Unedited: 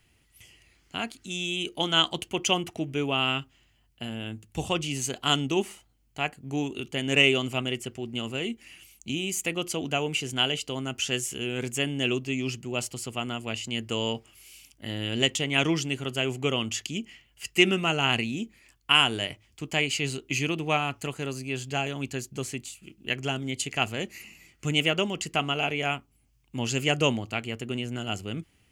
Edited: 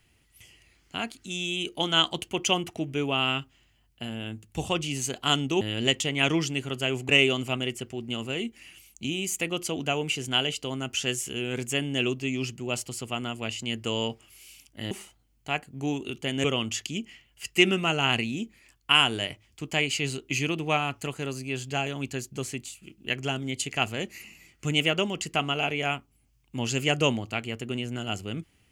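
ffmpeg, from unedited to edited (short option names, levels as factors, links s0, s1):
-filter_complex "[0:a]asplit=5[s0][s1][s2][s3][s4];[s0]atrim=end=5.612[s5];[s1]atrim=start=14.958:end=16.442[s6];[s2]atrim=start=7.138:end=14.962[s7];[s3]atrim=start=5.608:end=7.142[s8];[s4]atrim=start=16.438[s9];[s5][s6]acrossfade=d=0.004:c1=hsin:c2=hsin[s10];[s10][s7]acrossfade=d=0.004:c1=hsin:c2=hsin[s11];[s11][s8]acrossfade=d=0.004:c1=hsin:c2=hsin[s12];[s12][s9]acrossfade=d=0.004:c1=hsin:c2=hsin"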